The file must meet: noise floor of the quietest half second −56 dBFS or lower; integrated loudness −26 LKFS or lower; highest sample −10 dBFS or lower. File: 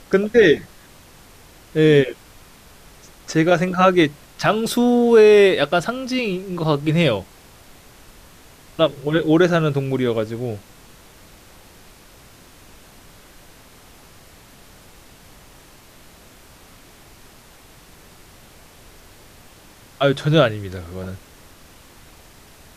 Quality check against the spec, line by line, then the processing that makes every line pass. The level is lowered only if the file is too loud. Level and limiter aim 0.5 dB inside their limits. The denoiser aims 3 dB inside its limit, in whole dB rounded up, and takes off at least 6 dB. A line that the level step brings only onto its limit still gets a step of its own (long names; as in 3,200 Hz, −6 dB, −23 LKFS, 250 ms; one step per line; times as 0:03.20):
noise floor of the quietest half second −47 dBFS: out of spec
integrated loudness −17.5 LKFS: out of spec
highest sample −3.5 dBFS: out of spec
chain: broadband denoise 6 dB, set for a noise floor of −47 dBFS
level −9 dB